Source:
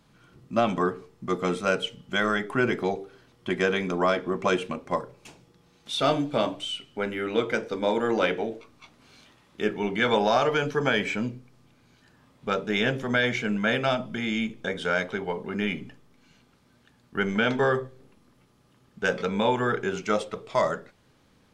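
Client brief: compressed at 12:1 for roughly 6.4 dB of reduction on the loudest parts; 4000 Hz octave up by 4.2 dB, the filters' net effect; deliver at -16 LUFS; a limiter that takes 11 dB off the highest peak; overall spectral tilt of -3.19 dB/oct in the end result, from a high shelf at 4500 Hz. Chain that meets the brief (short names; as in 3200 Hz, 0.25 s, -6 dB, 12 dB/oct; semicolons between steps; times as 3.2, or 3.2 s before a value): bell 4000 Hz +7.5 dB; high shelf 4500 Hz -4.5 dB; compressor 12:1, threshold -24 dBFS; gain +19 dB; limiter -5.5 dBFS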